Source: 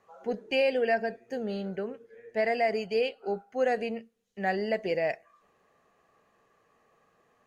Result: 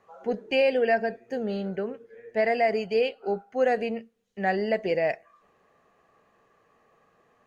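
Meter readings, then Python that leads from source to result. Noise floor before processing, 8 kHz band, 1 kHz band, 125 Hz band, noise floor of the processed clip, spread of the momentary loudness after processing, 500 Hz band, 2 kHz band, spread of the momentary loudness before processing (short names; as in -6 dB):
-69 dBFS, n/a, +3.5 dB, +3.5 dB, -66 dBFS, 10 LU, +3.5 dB, +2.5 dB, 11 LU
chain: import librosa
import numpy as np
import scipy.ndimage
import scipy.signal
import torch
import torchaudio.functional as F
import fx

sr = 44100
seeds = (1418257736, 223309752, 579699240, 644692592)

y = fx.high_shelf(x, sr, hz=4900.0, db=-6.5)
y = y * 10.0 ** (3.5 / 20.0)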